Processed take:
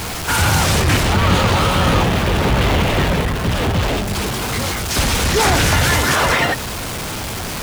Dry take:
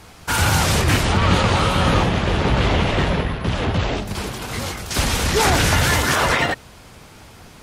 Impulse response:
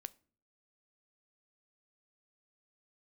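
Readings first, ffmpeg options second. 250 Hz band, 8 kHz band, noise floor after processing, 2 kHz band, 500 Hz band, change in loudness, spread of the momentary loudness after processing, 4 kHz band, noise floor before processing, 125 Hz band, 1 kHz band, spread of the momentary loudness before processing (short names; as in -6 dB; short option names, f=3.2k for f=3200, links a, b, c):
+2.5 dB, +3.5 dB, -25 dBFS, +2.5 dB, +2.5 dB, +2.0 dB, 8 LU, +3.0 dB, -44 dBFS, +2.5 dB, +2.5 dB, 10 LU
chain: -af "aeval=exprs='val(0)+0.5*0.1*sgn(val(0))':c=same"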